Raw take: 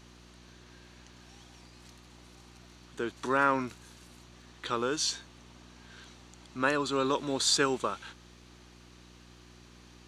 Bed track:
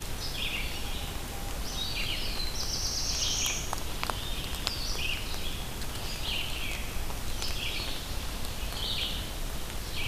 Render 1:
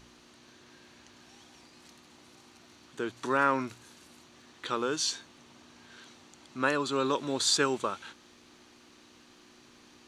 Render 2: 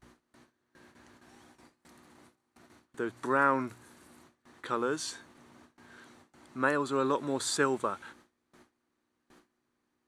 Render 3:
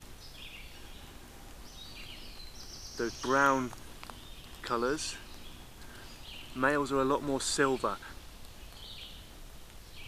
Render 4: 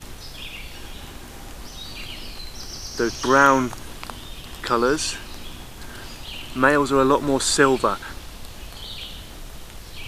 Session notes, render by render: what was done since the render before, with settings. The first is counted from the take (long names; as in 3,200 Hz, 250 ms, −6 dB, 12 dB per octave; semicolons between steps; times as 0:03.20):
hum removal 60 Hz, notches 3
noise gate with hold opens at −45 dBFS; flat-topped bell 4,100 Hz −9 dB
mix in bed track −14.5 dB
level +11.5 dB; brickwall limiter −2 dBFS, peak gain reduction 1.5 dB